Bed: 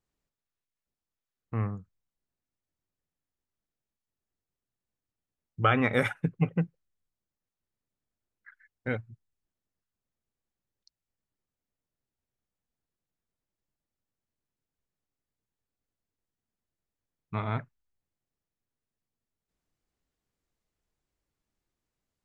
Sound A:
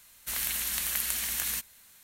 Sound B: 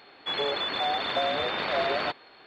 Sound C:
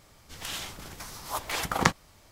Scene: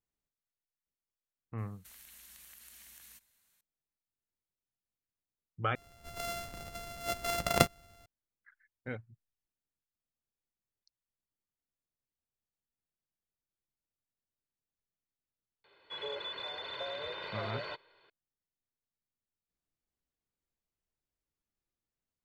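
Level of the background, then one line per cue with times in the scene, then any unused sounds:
bed -9 dB
1.58 add A -17.5 dB + compressor 5:1, threshold -34 dBFS
5.75 replace with C -2.5 dB + sample sorter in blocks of 64 samples
15.64 add B -14.5 dB + comb 2 ms, depth 72%

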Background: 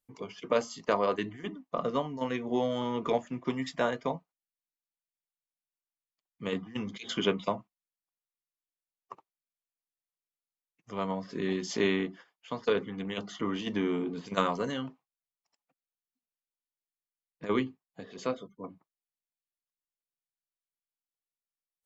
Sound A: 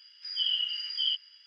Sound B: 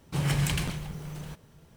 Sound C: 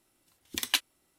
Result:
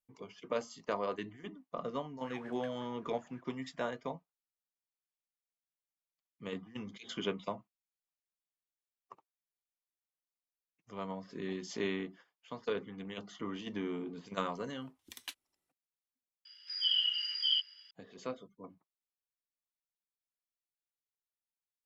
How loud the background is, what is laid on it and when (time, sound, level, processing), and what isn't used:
background -8 dB
2.06 add B -3.5 dB + wah 5.5 Hz 730–1700 Hz, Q 10
14.54 add C -18 dB
16.45 replace with A -1.5 dB

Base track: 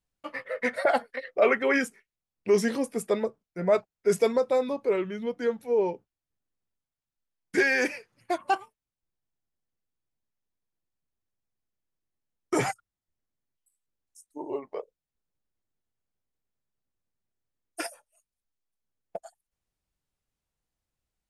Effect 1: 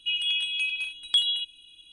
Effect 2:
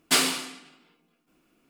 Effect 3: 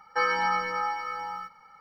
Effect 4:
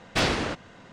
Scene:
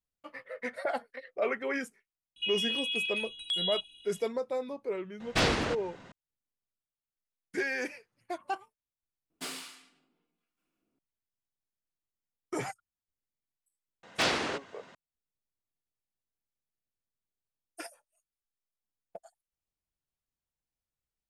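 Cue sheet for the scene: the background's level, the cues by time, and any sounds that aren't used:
base track -9 dB
2.36 add 1 -3 dB + limiter -22 dBFS
5.2 add 4 -2.5 dB
9.3 add 2 -13.5 dB + harmonic tremolo 1.2 Hz, crossover 890 Hz
14.03 add 4 -2.5 dB + HPF 400 Hz 6 dB/oct
not used: 3

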